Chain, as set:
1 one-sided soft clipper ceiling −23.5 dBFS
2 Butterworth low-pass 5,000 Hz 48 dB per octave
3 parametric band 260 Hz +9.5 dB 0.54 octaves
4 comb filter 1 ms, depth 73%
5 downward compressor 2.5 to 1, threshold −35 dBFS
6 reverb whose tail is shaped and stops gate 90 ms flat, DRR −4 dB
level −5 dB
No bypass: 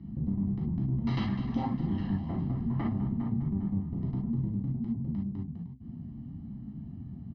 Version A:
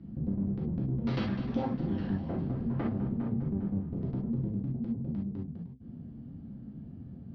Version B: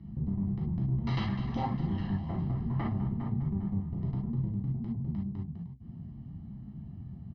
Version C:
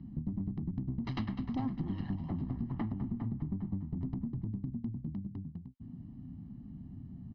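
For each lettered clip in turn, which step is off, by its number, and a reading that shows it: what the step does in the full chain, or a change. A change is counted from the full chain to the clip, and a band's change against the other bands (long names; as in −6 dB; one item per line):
4, 500 Hz band +7.5 dB
3, 250 Hz band −3.5 dB
6, change in integrated loudness −6.0 LU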